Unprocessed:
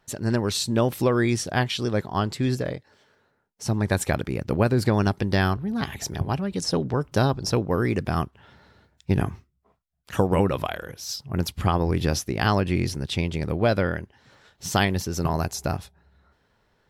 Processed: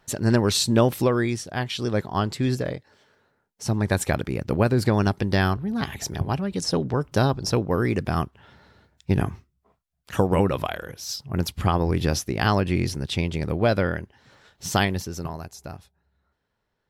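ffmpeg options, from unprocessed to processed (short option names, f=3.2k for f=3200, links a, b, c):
-af "volume=11.5dB,afade=t=out:st=0.72:d=0.76:silence=0.281838,afade=t=in:st=1.48:d=0.44:silence=0.421697,afade=t=out:st=14.75:d=0.64:silence=0.266073"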